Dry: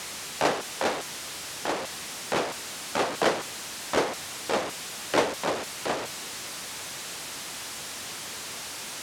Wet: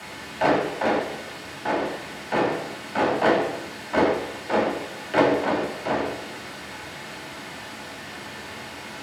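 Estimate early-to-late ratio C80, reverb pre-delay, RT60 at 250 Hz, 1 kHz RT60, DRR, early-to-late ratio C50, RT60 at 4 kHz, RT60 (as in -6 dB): 7.5 dB, 3 ms, 0.85 s, 0.90 s, -6.5 dB, 5.0 dB, 0.90 s, 0.90 s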